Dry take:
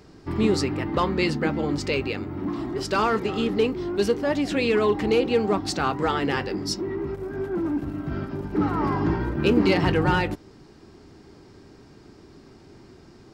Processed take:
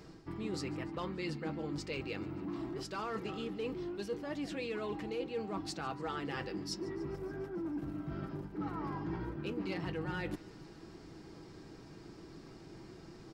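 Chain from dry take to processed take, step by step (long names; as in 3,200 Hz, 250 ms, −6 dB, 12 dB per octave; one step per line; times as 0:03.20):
comb filter 6.1 ms, depth 38%
reversed playback
downward compressor 4 to 1, threshold −35 dBFS, peak gain reduction 17.5 dB
reversed playback
delay with a high-pass on its return 145 ms, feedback 69%, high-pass 1,400 Hz, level −21 dB
level −3.5 dB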